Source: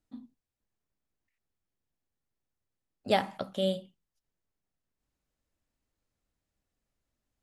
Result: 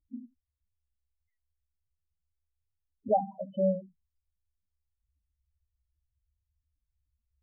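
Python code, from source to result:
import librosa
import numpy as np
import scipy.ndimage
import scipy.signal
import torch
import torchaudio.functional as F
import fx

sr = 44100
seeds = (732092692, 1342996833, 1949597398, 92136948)

y = fx.peak_eq(x, sr, hz=70.0, db=12.0, octaves=0.45)
y = fx.spec_topn(y, sr, count=4)
y = F.gain(torch.from_numpy(y), 3.5).numpy()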